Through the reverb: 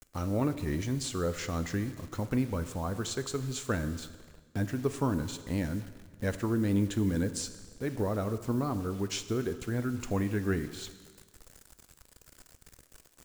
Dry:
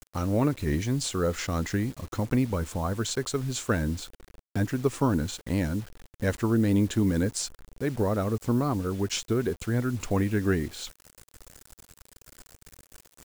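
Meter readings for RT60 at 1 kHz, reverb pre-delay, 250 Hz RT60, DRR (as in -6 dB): 1.5 s, 5 ms, 1.5 s, 10.5 dB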